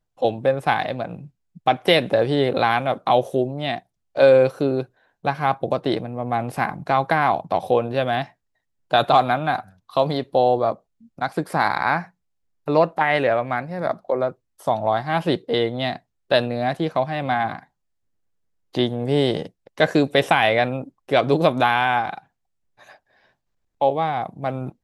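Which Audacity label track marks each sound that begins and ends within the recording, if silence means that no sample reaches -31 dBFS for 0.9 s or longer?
18.750000	22.180000	sound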